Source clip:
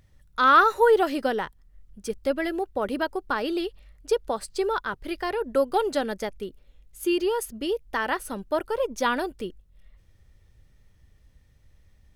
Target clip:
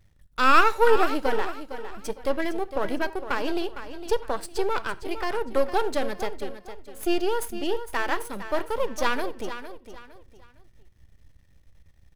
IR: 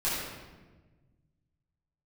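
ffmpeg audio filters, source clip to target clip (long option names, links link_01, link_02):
-filter_complex "[0:a]aeval=exprs='if(lt(val(0),0),0.251*val(0),val(0))':channel_layout=same,aecho=1:1:458|916|1374:0.266|0.0825|0.0256,asplit=2[link_01][link_02];[1:a]atrim=start_sample=2205,afade=type=out:start_time=0.15:duration=0.01,atrim=end_sample=7056[link_03];[link_02][link_03]afir=irnorm=-1:irlink=0,volume=-23dB[link_04];[link_01][link_04]amix=inputs=2:normalize=0,volume=2dB"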